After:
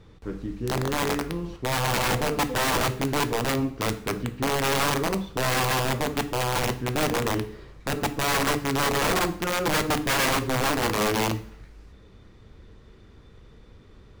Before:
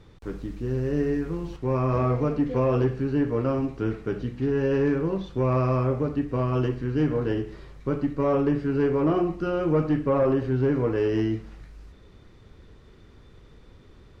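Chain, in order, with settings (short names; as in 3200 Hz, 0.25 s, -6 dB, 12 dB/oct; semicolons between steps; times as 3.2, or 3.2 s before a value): wrapped overs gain 19 dB; two-slope reverb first 0.48 s, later 1.8 s, from -28 dB, DRR 10.5 dB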